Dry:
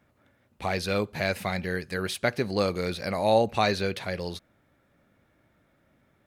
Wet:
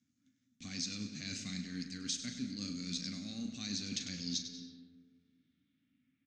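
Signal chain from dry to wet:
gain on one half-wave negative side −3 dB
high-pass filter 120 Hz 12 dB per octave
parametric band 270 Hz +15 dB 0.41 octaves
noise gate −55 dBFS, range −11 dB
Butterworth band-reject 920 Hz, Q 3.3
double-tracking delay 39 ms −10 dB
reversed playback
downward compressor 6 to 1, threshold −33 dBFS, peak gain reduction 15.5 dB
reversed playback
single-tap delay 99 ms −10.5 dB
on a send at −10 dB: convolution reverb RT60 1.8 s, pre-delay 147 ms
on the sum: low-pass filter sweep 8,100 Hz → 2,500 Hz, 0:03.87–0:06.20
drawn EQ curve 250 Hz 0 dB, 360 Hz −18 dB, 620 Hz −25 dB, 6,500 Hz +11 dB, 9,900 Hz −18 dB
level −2 dB

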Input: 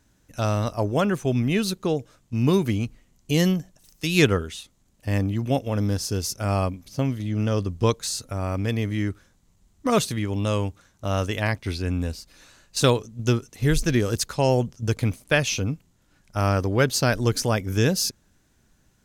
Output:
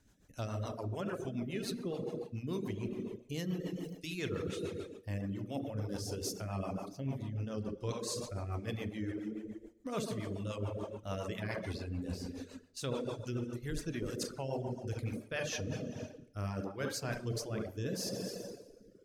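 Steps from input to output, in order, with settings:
hum removal 74.31 Hz, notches 4
on a send: tape delay 69 ms, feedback 87%, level −3.5 dB, low-pass 1,500 Hz
on the sum: four-comb reverb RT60 1.5 s, combs from 29 ms, DRR 6.5 dB
rotating-speaker cabinet horn 7 Hz, later 0.7 Hz, at 0:15.35
reversed playback
downward compressor 6 to 1, threshold −30 dBFS, peak gain reduction 15.5 dB
reversed playback
reverb reduction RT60 0.92 s
level −3.5 dB

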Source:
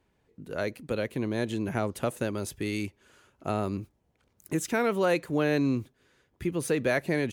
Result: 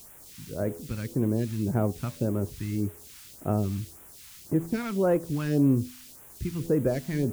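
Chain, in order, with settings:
running median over 15 samples
spectral tilt −2 dB per octave
hum removal 83.45 Hz, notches 13
bit-depth reduction 8 bits, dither triangular
all-pass phaser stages 2, 1.8 Hz, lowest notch 450–4,400 Hz

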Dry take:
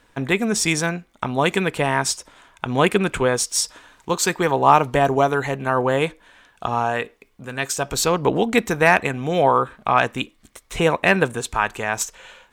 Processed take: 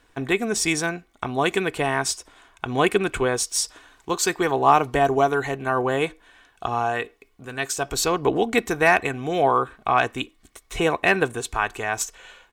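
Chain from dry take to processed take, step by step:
comb filter 2.7 ms, depth 42%
level −3 dB

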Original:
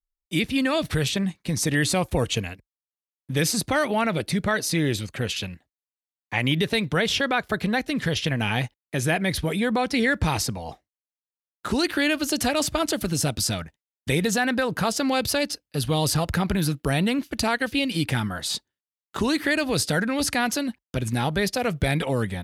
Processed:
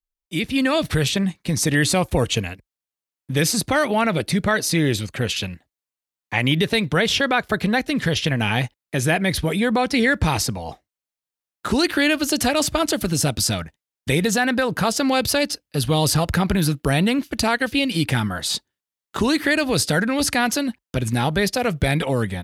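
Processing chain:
automatic gain control gain up to 7 dB
level −2.5 dB

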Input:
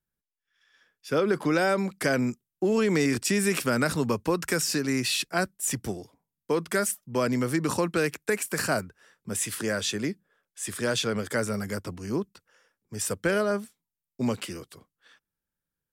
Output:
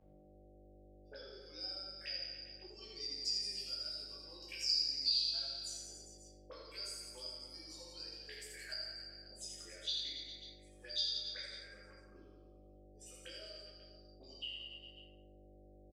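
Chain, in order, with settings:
spectral dynamics exaggerated over time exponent 2
envelope filter 480–4,800 Hz, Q 16, up, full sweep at −29 dBFS
octave-band graphic EQ 500/1,000/2,000/4,000 Hz +6/−4/−11/+6 dB
hum with harmonics 50 Hz, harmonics 15, −69 dBFS −7 dB per octave
low-shelf EQ 120 Hz −11 dB
notch filter 1,000 Hz, Q 21
notch comb filter 240 Hz
reverse bouncing-ball delay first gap 80 ms, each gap 1.15×, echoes 5
rectangular room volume 140 cubic metres, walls mixed, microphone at 1.8 metres
multiband upward and downward compressor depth 40%
level +4.5 dB

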